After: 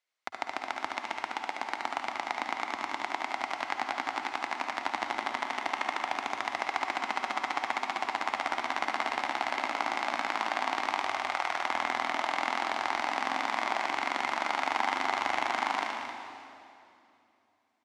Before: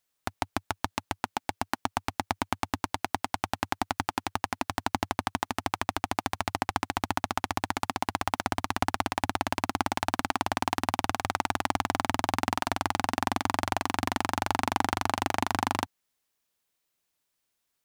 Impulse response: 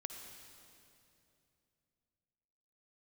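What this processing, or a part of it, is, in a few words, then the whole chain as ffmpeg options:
station announcement: -filter_complex "[0:a]asettb=1/sr,asplit=3[s0][s1][s2];[s0]atrim=end=10.984[s3];[s1]atrim=start=10.98:end=11.62,asetpts=PTS-STARTPTS,afade=t=in:d=0.004:c=qsin,afade=t=out:st=0.636:d=0.004:c=qsin,equalizer=f=250:t=o:w=0.62:g=-12[s4];[s2]atrim=start=11.616[s5];[s3][s4]acrossfade=d=0.004:c1=hsin:c2=qsin[s6];[s6][s5]acrossfade=d=0.004:c1=qsin:c2=hsin,highpass=460,lowpass=5000,equalizer=f=2100:t=o:w=0.21:g=8,aecho=1:1:72.89|198.3|262.4:0.562|0.251|0.316[s7];[1:a]atrim=start_sample=2205[s8];[s7][s8]afir=irnorm=-1:irlink=0"

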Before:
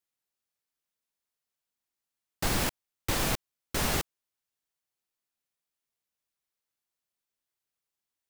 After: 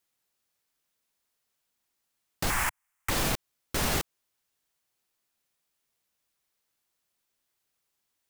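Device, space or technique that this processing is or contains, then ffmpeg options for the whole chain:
stacked limiters: -filter_complex "[0:a]asettb=1/sr,asplit=3[s0][s1][s2];[s0]atrim=end=2.504[s3];[s1]atrim=start=2.5:end=3.1,asetpts=PTS-STARTPTS,afade=t=in:d=0.004:c=qsin,afade=t=out:st=0.596:d=0.004:c=qsin,equalizer=f=125:t=o:w=1:g=-6,equalizer=f=250:t=o:w=1:g=-10,equalizer=f=500:t=o:w=1:g=-11,equalizer=f=1000:t=o:w=1:g=8,equalizer=f=2000:t=o:w=1:g=8,equalizer=f=4000:t=o:w=1:g=-11,equalizer=f=8000:t=o:w=1:g=4[s4];[s2]atrim=start=3.096[s5];[s3][s4]acrossfade=d=0.004:c1=hsin:c2=qsin[s6];[s6][s5]acrossfade=d=0.004:c1=qsin:c2=hsin,alimiter=limit=0.0944:level=0:latency=1:release=160,alimiter=level_in=1.26:limit=0.0631:level=0:latency=1:release=63,volume=0.794,volume=2.66"

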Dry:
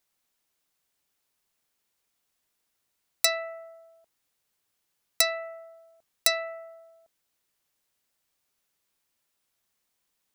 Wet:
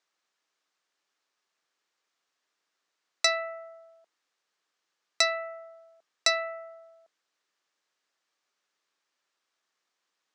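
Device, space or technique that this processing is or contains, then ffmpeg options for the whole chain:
television speaker: -af "highpass=f=210:w=0.5412,highpass=f=210:w=1.3066,equalizer=f=230:t=q:w=4:g=-8,equalizer=f=1200:t=q:w=4:g=5,equalizer=f=1700:t=q:w=4:g=4,lowpass=f=6700:w=0.5412,lowpass=f=6700:w=1.3066"

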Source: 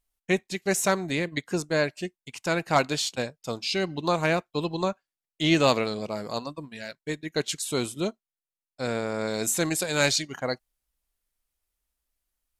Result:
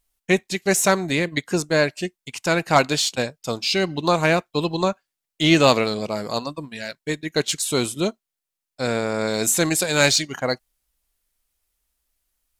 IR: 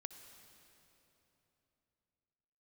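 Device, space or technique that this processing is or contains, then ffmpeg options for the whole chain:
exciter from parts: -filter_complex "[0:a]asplit=2[s0][s1];[s1]highpass=f=2800:p=1,asoftclip=type=tanh:threshold=0.0224,volume=0.422[s2];[s0][s2]amix=inputs=2:normalize=0,volume=1.88"

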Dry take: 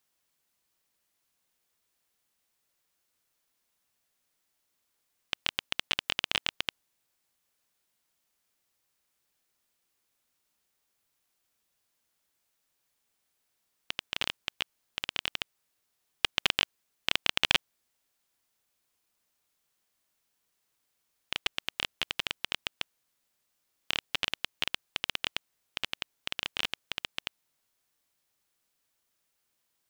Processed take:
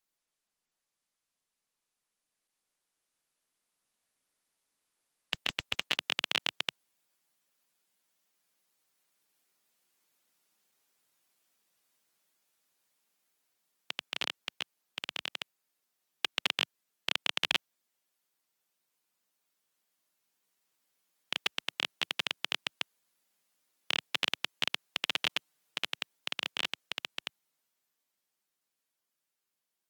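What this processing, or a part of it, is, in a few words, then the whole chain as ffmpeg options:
video call: -filter_complex "[0:a]asettb=1/sr,asplit=3[s0][s1][s2];[s0]atrim=end=25.044[s3];[s1]atrim=start=25.04:end=25.78,asetpts=PTS-STARTPTS,afade=t=in:d=0.004:c=qsin,afade=t=out:st=0.736:d=0.004:c=qsin,aecho=1:1:6.6:0.65,atrim=end_sample=32634[s4];[s2]atrim=start=25.776[s5];[s3][s4]acrossfade=d=0.004:c1=hsin:c2=qsin[s6];[s6][s5]acrossfade=d=0.004:c1=qsin:c2=hsin,highpass=f=140:w=0.5412,highpass=f=140:w=1.3066,dynaudnorm=f=340:g=17:m=3.98,volume=0.398" -ar 48000 -c:a libopus -b:a 24k

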